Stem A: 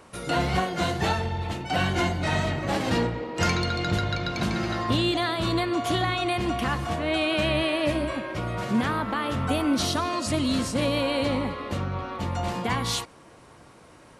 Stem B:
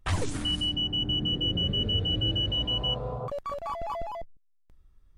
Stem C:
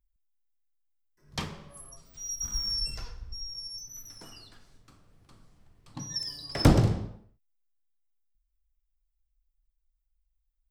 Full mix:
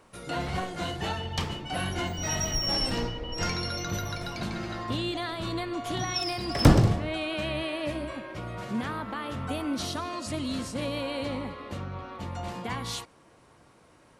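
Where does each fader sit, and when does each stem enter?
−7.0, −14.5, +2.0 decibels; 0.00, 0.40, 0.00 seconds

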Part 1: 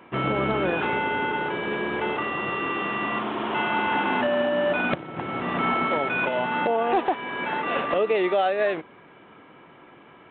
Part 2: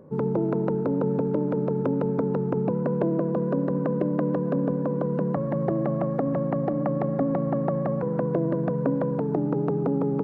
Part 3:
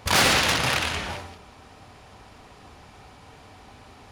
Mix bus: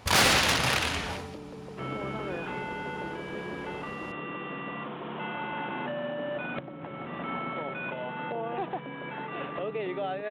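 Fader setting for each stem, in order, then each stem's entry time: −11.0, −18.0, −2.5 decibels; 1.65, 0.00, 0.00 seconds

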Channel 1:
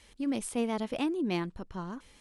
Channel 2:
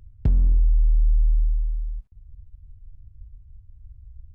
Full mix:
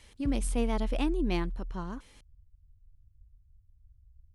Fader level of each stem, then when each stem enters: 0.0, −14.5 decibels; 0.00, 0.00 seconds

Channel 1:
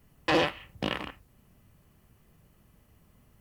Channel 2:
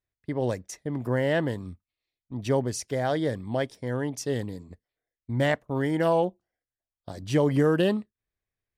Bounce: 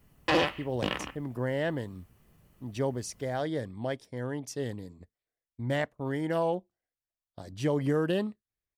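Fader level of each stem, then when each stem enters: −0.5, −5.5 decibels; 0.00, 0.30 seconds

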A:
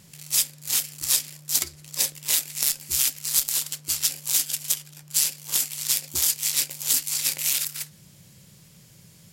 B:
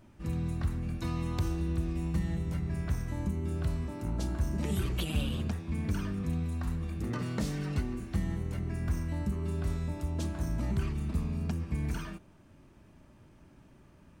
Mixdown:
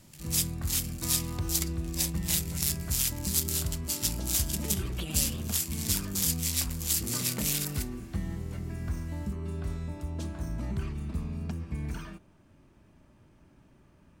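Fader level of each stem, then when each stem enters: −6.5, −2.0 decibels; 0.00, 0.00 seconds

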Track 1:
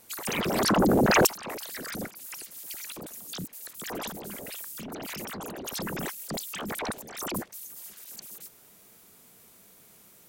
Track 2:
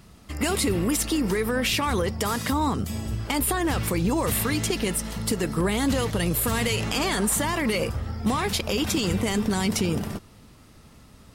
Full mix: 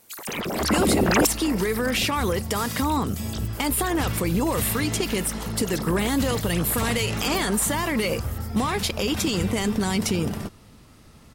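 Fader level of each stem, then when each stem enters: −0.5, +0.5 decibels; 0.00, 0.30 seconds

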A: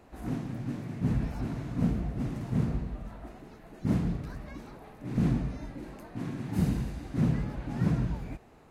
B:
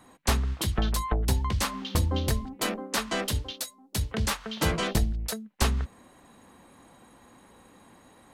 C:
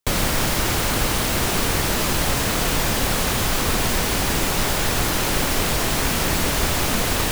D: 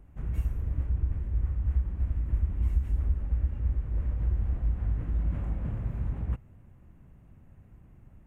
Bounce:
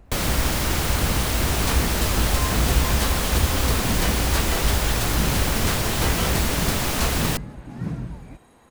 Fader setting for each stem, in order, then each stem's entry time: −2.0, −1.0, −3.0, +3.0 decibels; 0.00, 1.40, 0.05, 0.00 seconds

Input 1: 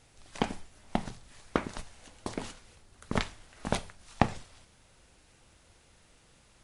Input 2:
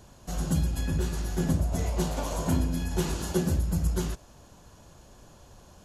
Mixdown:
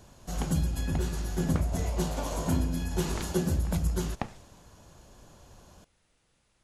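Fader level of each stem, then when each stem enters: −9.5, −1.5 decibels; 0.00, 0.00 seconds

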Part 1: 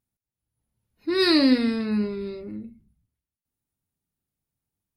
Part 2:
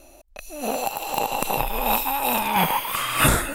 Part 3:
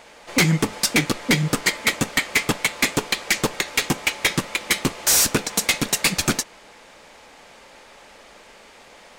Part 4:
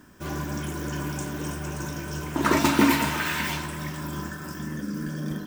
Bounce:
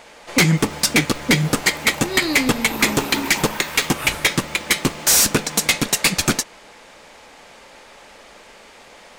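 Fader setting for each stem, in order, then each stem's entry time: −5.0, −12.0, +2.5, −7.0 decibels; 0.95, 0.80, 0.00, 0.35 seconds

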